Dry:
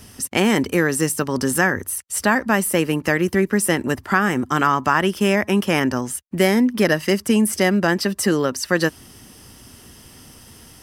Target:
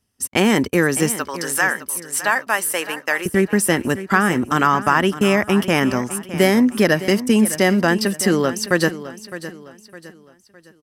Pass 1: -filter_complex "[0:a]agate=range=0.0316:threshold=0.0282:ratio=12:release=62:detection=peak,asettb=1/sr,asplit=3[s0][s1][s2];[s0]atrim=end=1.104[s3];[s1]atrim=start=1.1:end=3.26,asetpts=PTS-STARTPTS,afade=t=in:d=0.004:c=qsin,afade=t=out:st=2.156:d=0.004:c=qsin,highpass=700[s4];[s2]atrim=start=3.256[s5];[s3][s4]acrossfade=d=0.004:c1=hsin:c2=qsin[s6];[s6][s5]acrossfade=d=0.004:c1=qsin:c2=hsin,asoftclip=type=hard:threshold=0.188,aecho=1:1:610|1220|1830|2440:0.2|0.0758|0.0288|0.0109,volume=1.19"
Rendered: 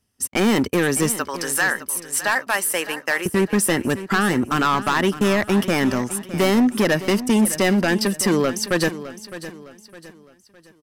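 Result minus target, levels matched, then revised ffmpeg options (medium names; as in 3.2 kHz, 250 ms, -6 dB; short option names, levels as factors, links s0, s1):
hard clipper: distortion +37 dB
-filter_complex "[0:a]agate=range=0.0316:threshold=0.0282:ratio=12:release=62:detection=peak,asettb=1/sr,asplit=3[s0][s1][s2];[s0]atrim=end=1.104[s3];[s1]atrim=start=1.1:end=3.26,asetpts=PTS-STARTPTS,afade=t=in:d=0.004:c=qsin,afade=t=out:st=2.156:d=0.004:c=qsin,highpass=700[s4];[s2]atrim=start=3.256[s5];[s3][s4]acrossfade=d=0.004:c1=hsin:c2=qsin[s6];[s6][s5]acrossfade=d=0.004:c1=qsin:c2=hsin,asoftclip=type=hard:threshold=0.668,aecho=1:1:610|1220|1830|2440:0.2|0.0758|0.0288|0.0109,volume=1.19"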